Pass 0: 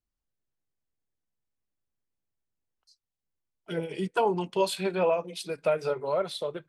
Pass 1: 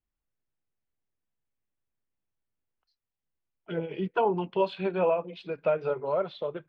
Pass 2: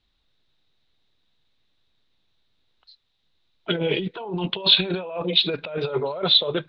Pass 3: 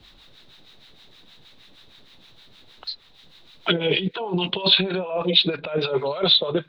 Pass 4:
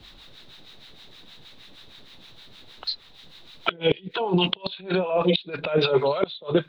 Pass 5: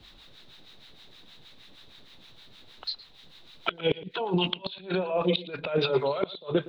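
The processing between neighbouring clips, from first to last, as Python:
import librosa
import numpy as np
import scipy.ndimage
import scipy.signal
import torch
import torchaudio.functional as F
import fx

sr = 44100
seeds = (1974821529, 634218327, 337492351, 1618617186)

y1 = scipy.signal.sosfilt(scipy.signal.butter(4, 3000.0, 'lowpass', fs=sr, output='sos'), x)
y1 = fx.dynamic_eq(y1, sr, hz=2000.0, q=3.0, threshold_db=-52.0, ratio=4.0, max_db=-6)
y2 = fx.over_compress(y1, sr, threshold_db=-36.0, ratio=-1.0)
y2 = fx.lowpass_res(y2, sr, hz=3800.0, q=10.0)
y2 = F.gain(torch.from_numpy(y2), 8.5).numpy()
y3 = fx.harmonic_tremolo(y2, sr, hz=6.4, depth_pct=70, crossover_hz=850.0)
y3 = fx.band_squash(y3, sr, depth_pct=70)
y3 = F.gain(torch.from_numpy(y3), 4.5).numpy()
y4 = fx.gate_flip(y3, sr, shuts_db=-10.0, range_db=-25)
y4 = F.gain(torch.from_numpy(y4), 3.0).numpy()
y5 = y4 + 10.0 ** (-18.0 / 20.0) * np.pad(y4, (int(115 * sr / 1000.0), 0))[:len(y4)]
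y5 = F.gain(torch.from_numpy(y5), -4.5).numpy()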